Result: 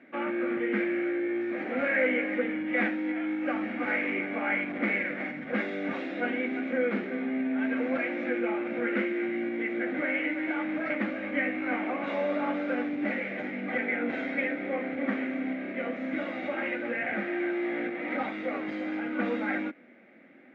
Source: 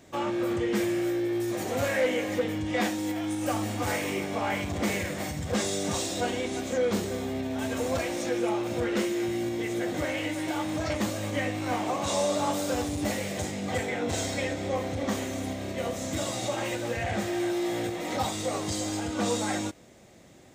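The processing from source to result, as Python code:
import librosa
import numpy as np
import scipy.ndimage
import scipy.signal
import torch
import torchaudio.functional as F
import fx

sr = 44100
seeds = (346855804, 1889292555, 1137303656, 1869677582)

y = fx.cabinet(x, sr, low_hz=230.0, low_slope=24, high_hz=2300.0, hz=(250.0, 410.0, 700.0, 1000.0, 1500.0, 2200.0), db=(7, -6, -4, -10, 6, 9))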